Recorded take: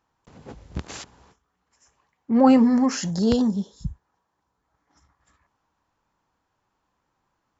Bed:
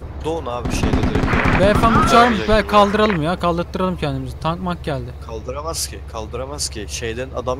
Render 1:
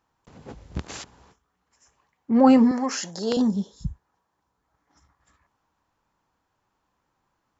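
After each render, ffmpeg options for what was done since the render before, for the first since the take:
-filter_complex "[0:a]asettb=1/sr,asplit=3[s0][s1][s2];[s0]atrim=end=2.714[s3];[s1]atrim=start=2.71:end=3.37,asetpts=PTS-STARTPTS,afade=t=in:d=0.004:c=qsin,afade=t=out:st=0.656:d=0.004:c=qsin,highpass=390[s4];[s2]atrim=start=3.366[s5];[s3][s4]acrossfade=d=0.004:c1=hsin:c2=qsin[s6];[s6][s5]acrossfade=d=0.004:c1=qsin:c2=hsin"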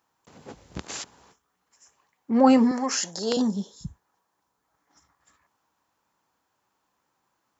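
-af "highpass=f=220:p=1,highshelf=f=6500:g=9"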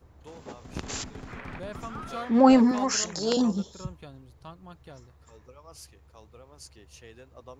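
-filter_complex "[1:a]volume=0.0596[s0];[0:a][s0]amix=inputs=2:normalize=0"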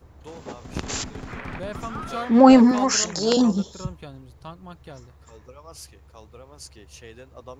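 -af "volume=1.88,alimiter=limit=0.891:level=0:latency=1"

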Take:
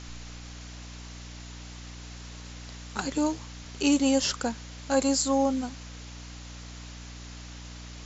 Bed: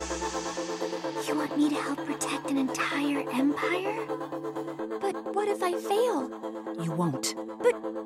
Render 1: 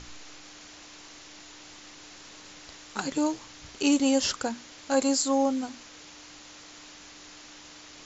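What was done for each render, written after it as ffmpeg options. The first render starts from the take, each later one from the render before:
-af "bandreject=f=60:t=h:w=6,bandreject=f=120:t=h:w=6,bandreject=f=180:t=h:w=6,bandreject=f=240:t=h:w=6"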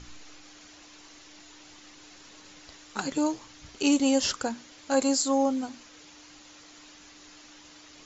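-af "afftdn=nr=6:nf=-49"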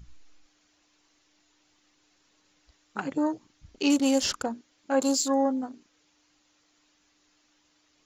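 -af "afwtdn=0.0112"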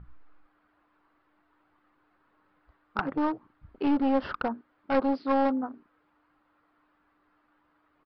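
-af "lowpass=f=1300:t=q:w=2.3,aresample=11025,aeval=exprs='clip(val(0),-1,0.0631)':c=same,aresample=44100"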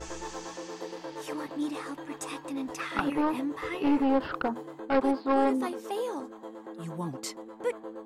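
-filter_complex "[1:a]volume=0.447[s0];[0:a][s0]amix=inputs=2:normalize=0"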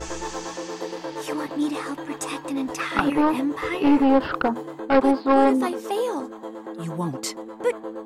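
-af "volume=2.37"

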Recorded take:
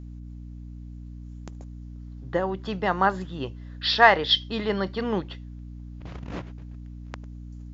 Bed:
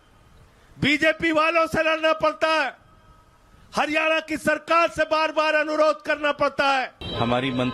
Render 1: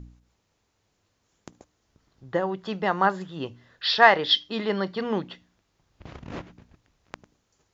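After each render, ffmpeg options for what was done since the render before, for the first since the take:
-af "bandreject=f=60:t=h:w=4,bandreject=f=120:t=h:w=4,bandreject=f=180:t=h:w=4,bandreject=f=240:t=h:w=4,bandreject=f=300:t=h:w=4"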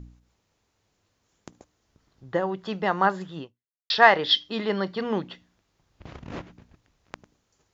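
-filter_complex "[0:a]asplit=2[s0][s1];[s0]atrim=end=3.9,asetpts=PTS-STARTPTS,afade=t=out:st=3.39:d=0.51:c=exp[s2];[s1]atrim=start=3.9,asetpts=PTS-STARTPTS,afade=t=in:d=0.004:c=hsin[s3];[s2][s3]concat=n=2:v=0:a=1"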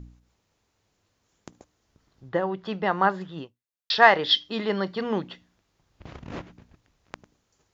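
-filter_complex "[0:a]asettb=1/sr,asplit=3[s0][s1][s2];[s0]atrim=end=2.294[s3];[s1]atrim=start=2.29:end=3.38,asetpts=PTS-STARTPTS,afade=t=in:d=0.004:c=qsin,afade=t=out:st=1.086:d=0.004:c=qsin,lowpass=4700[s4];[s2]atrim=start=3.376[s5];[s3][s4]acrossfade=d=0.004:c1=hsin:c2=qsin[s6];[s6][s5]acrossfade=d=0.004:c1=qsin:c2=hsin"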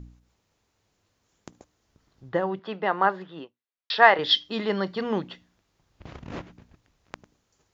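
-filter_complex "[0:a]asettb=1/sr,asplit=3[s0][s1][s2];[s0]atrim=end=2.594[s3];[s1]atrim=start=2.59:end=4.19,asetpts=PTS-STARTPTS,afade=t=in:d=0.004:c=qsin,afade=t=out:st=1.596:d=0.004:c=qsin,highpass=260,lowpass=3700[s4];[s2]atrim=start=4.186[s5];[s3][s4]acrossfade=d=0.004:c1=hsin:c2=qsin[s6];[s6][s5]acrossfade=d=0.004:c1=qsin:c2=hsin"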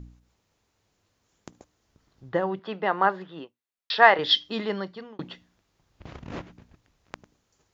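-filter_complex "[0:a]asplit=2[s0][s1];[s0]atrim=end=5.19,asetpts=PTS-STARTPTS,afade=t=out:st=4.52:d=0.67[s2];[s1]atrim=start=5.19,asetpts=PTS-STARTPTS,afade=t=in:d=0.004:c=hsin[s3];[s2][s3]concat=n=2:v=0:a=1"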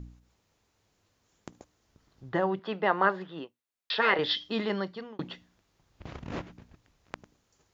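-filter_complex "[0:a]afftfilt=real='re*lt(hypot(re,im),0.631)':imag='im*lt(hypot(re,im),0.631)':win_size=1024:overlap=0.75,acrossover=split=4200[s0][s1];[s1]acompressor=threshold=0.00501:ratio=4:attack=1:release=60[s2];[s0][s2]amix=inputs=2:normalize=0"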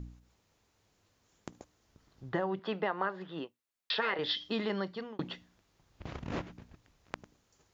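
-af "acompressor=threshold=0.0355:ratio=5"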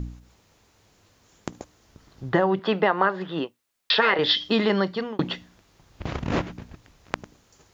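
-af "volume=3.98"

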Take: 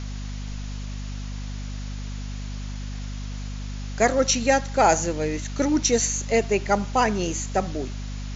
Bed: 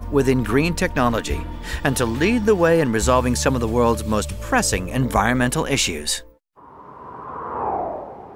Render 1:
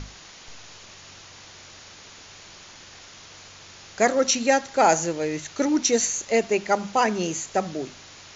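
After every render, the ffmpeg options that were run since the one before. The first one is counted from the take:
-af "bandreject=f=50:t=h:w=6,bandreject=f=100:t=h:w=6,bandreject=f=150:t=h:w=6,bandreject=f=200:t=h:w=6,bandreject=f=250:t=h:w=6"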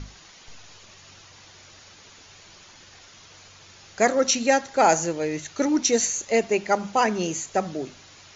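-af "afftdn=nr=6:nf=-46"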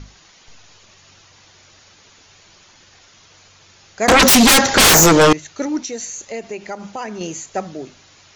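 -filter_complex "[0:a]asettb=1/sr,asplit=3[s0][s1][s2];[s0]atrim=end=4.084[s3];[s1]atrim=start=4.08:end=5.33,asetpts=PTS-STARTPTS,afade=t=in:d=0.004:c=qsin,afade=t=out:st=1.246:d=0.004:c=qsin,aeval=exprs='0.473*sin(PI/2*10*val(0)/0.473)':c=same[s4];[s2]atrim=start=5.326[s5];[s3][s4]acrossfade=d=0.004:c1=hsin:c2=qsin[s6];[s6][s5]acrossfade=d=0.004:c1=qsin:c2=hsin,asettb=1/sr,asplit=3[s7][s8][s9];[s7]atrim=end=5.844[s10];[s8]atrim=start=5.84:end=7.21,asetpts=PTS-STARTPTS,afade=t=in:d=0.004:c=qsin,afade=t=out:st=1.366:d=0.004:c=qsin,acompressor=threshold=0.0447:ratio=2.5:attack=3.2:release=140:knee=1:detection=peak[s11];[s9]atrim=start=7.206[s12];[s10][s11]acrossfade=d=0.004:c1=hsin:c2=qsin[s13];[s13][s12]acrossfade=d=0.004:c1=qsin:c2=hsin"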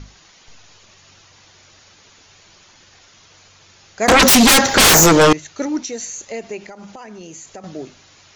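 -filter_complex "[0:a]asplit=3[s0][s1][s2];[s0]afade=t=out:st=4.05:d=0.02[s3];[s1]aeval=exprs='val(0)*gte(abs(val(0)),0.015)':c=same,afade=t=in:st=4.05:d=0.02,afade=t=out:st=5.19:d=0.02[s4];[s2]afade=t=in:st=5.19:d=0.02[s5];[s3][s4][s5]amix=inputs=3:normalize=0,asettb=1/sr,asplit=3[s6][s7][s8];[s6]atrim=end=6.664[s9];[s7]atrim=start=6.66:end=7.64,asetpts=PTS-STARTPTS,afade=t=in:d=0.004:c=qsin,afade=t=out:st=0.976:d=0.004:c=qsin,acompressor=threshold=0.0224:ratio=6:attack=3.2:release=140:knee=1:detection=peak[s10];[s8]atrim=start=7.636[s11];[s9][s10]acrossfade=d=0.004:c1=hsin:c2=qsin[s12];[s12][s11]acrossfade=d=0.004:c1=qsin:c2=hsin"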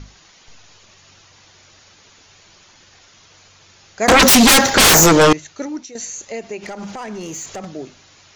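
-filter_complex "[0:a]asettb=1/sr,asplit=3[s0][s1][s2];[s0]atrim=end=4.084[s3];[s1]atrim=start=4.08:end=4.7,asetpts=PTS-STARTPTS,afade=t=in:d=0.004:c=qsin,afade=t=out:st=0.616:d=0.004:c=qsin,aeval=exprs='val(0)+0.5*0.0447*sgn(val(0))':c=same[s4];[s2]atrim=start=4.696[s5];[s3][s4]acrossfade=d=0.004:c1=hsin:c2=qsin[s6];[s6][s5]acrossfade=d=0.004:c1=qsin:c2=hsin,asplit=3[s7][s8][s9];[s7]afade=t=out:st=6.62:d=0.02[s10];[s8]aeval=exprs='0.0562*sin(PI/2*1.78*val(0)/0.0562)':c=same,afade=t=in:st=6.62:d=0.02,afade=t=out:st=7.64:d=0.02[s11];[s9]afade=t=in:st=7.64:d=0.02[s12];[s10][s11][s12]amix=inputs=3:normalize=0,asplit=2[s13][s14];[s13]atrim=end=5.95,asetpts=PTS-STARTPTS,afade=t=out:st=5.32:d=0.63:silence=0.281838[s15];[s14]atrim=start=5.95,asetpts=PTS-STARTPTS,afade=t=in:d=0.004:c=hsin:silence=0.281838[s16];[s15][s16]concat=n=2:v=0:a=1"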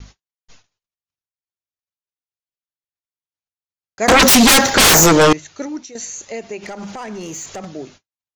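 -af "agate=range=0.00141:threshold=0.00794:ratio=16:detection=peak"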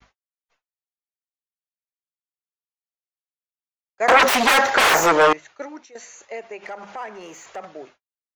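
-filter_complex "[0:a]agate=range=0.0224:threshold=0.0224:ratio=3:detection=peak,acrossover=split=460 2600:gain=0.112 1 0.178[s0][s1][s2];[s0][s1][s2]amix=inputs=3:normalize=0"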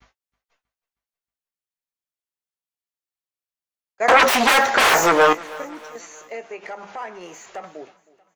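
-filter_complex "[0:a]asplit=2[s0][s1];[s1]adelay=17,volume=0.282[s2];[s0][s2]amix=inputs=2:normalize=0,aecho=1:1:316|632|948|1264:0.0891|0.0446|0.0223|0.0111"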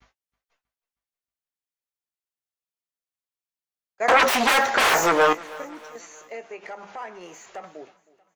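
-af "volume=0.668"

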